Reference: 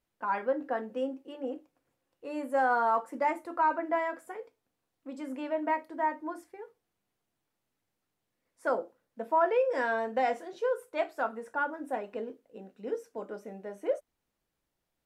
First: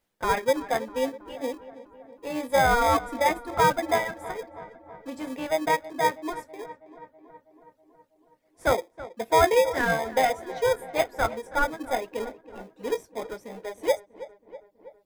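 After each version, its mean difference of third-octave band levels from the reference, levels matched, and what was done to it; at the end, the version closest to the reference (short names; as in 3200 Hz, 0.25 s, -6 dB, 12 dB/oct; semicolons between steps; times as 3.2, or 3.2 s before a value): 10.5 dB: reverb removal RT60 2 s; low shelf 320 Hz -10 dB; in parallel at -3.5 dB: sample-and-hold 31×; on the sum: darkening echo 0.324 s, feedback 67%, low-pass 2400 Hz, level -16 dB; gain +6.5 dB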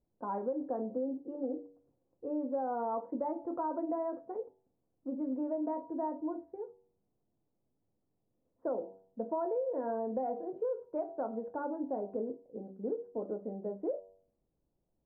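7.5 dB: Bessel low-pass 510 Hz, order 4; de-hum 95.49 Hz, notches 10; in parallel at 0 dB: limiter -31 dBFS, peak gain reduction 10.5 dB; on the sum: compressor, threshold -31 dBFS, peak gain reduction 9 dB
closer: second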